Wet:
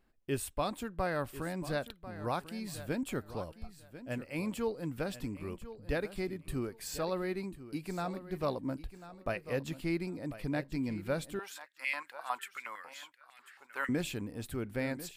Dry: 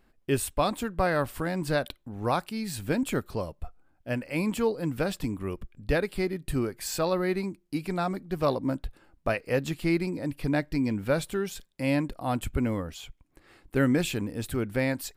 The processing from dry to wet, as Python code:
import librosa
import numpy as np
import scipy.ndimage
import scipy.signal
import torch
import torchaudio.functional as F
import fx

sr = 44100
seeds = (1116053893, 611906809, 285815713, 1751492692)

y = fx.echo_feedback(x, sr, ms=1044, feedback_pct=20, wet_db=-14)
y = fx.filter_held_highpass(y, sr, hz=11.0, low_hz=880.0, high_hz=2100.0, at=(11.39, 13.89))
y = y * 10.0 ** (-8.0 / 20.0)